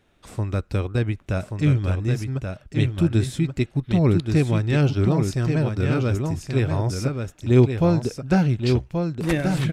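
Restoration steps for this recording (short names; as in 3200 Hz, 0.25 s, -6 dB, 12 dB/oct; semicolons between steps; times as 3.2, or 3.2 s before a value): inverse comb 1.13 s -5.5 dB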